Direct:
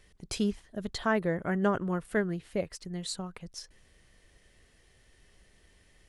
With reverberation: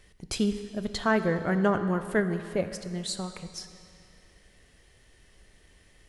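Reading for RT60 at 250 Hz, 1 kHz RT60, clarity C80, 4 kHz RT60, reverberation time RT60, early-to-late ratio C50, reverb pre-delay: 2.5 s, 2.6 s, 11.0 dB, 2.3 s, 2.6 s, 10.0 dB, 15 ms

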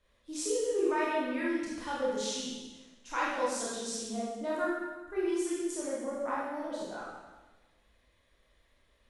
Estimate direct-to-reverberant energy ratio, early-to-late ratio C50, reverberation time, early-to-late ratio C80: -7.5 dB, -1.5 dB, 1.2 s, 1.5 dB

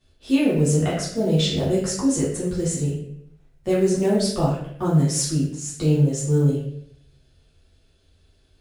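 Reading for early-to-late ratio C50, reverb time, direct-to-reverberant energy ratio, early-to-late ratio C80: 2.5 dB, 0.70 s, -8.5 dB, 6.5 dB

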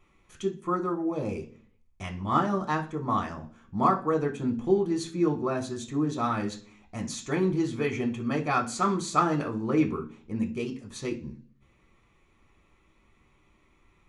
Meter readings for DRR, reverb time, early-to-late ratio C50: 1.5 dB, 0.45 s, 14.0 dB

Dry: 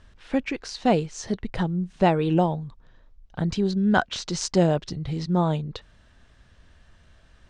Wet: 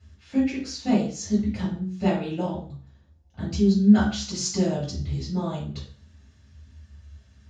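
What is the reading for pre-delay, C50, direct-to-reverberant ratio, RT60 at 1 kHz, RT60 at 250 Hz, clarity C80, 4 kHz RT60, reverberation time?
3 ms, 5.5 dB, -5.5 dB, 0.45 s, 0.50 s, 11.0 dB, 0.40 s, 0.45 s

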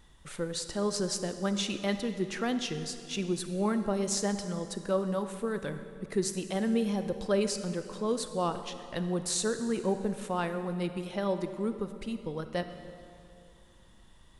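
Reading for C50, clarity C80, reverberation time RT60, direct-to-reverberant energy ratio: 9.5 dB, 10.5 dB, 2.5 s, 9.0 dB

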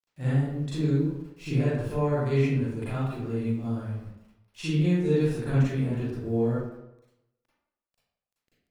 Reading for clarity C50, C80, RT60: -4.0 dB, 1.0 dB, 0.90 s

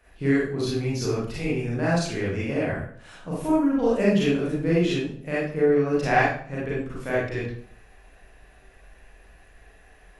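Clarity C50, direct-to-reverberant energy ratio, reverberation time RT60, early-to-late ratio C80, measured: 0.0 dB, -7.5 dB, 0.55 s, 6.0 dB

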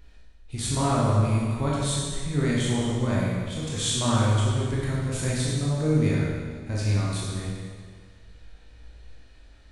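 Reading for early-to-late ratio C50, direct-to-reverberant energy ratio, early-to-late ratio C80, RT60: -2.0 dB, -6.5 dB, 0.5 dB, 1.7 s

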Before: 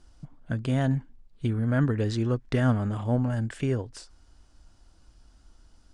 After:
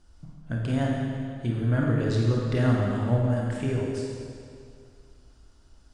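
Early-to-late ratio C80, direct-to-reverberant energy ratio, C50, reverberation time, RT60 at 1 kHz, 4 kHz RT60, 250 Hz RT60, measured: 1.0 dB, -2.0 dB, -0.5 dB, 2.3 s, 2.3 s, 2.1 s, 2.3 s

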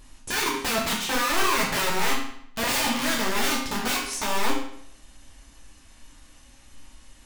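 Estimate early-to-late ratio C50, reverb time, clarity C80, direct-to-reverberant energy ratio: 4.0 dB, 0.65 s, 7.0 dB, -3.0 dB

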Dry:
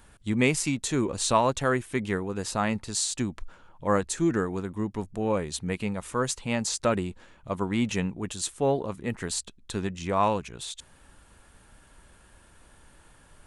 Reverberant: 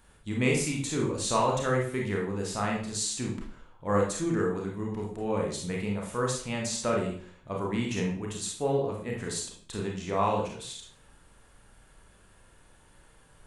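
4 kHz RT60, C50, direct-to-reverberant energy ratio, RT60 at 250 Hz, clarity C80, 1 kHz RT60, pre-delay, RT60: 0.45 s, 4.0 dB, -1.5 dB, 0.55 s, 8.5 dB, 0.50 s, 27 ms, 0.50 s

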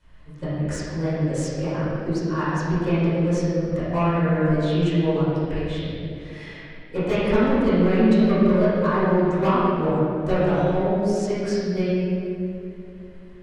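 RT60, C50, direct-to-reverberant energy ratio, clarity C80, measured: 2.7 s, -4.5 dB, -14.0 dB, -2.0 dB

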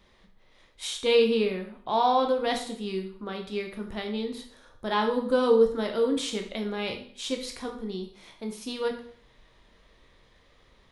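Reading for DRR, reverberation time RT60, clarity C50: 3.0 dB, 0.50 s, 8.5 dB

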